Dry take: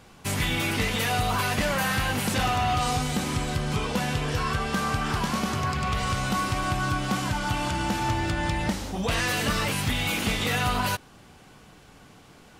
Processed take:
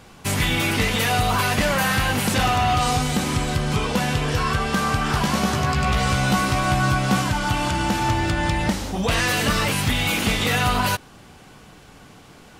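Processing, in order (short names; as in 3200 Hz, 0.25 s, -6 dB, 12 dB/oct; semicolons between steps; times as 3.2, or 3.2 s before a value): 5.11–7.23 doubler 15 ms -4.5 dB; gain +5 dB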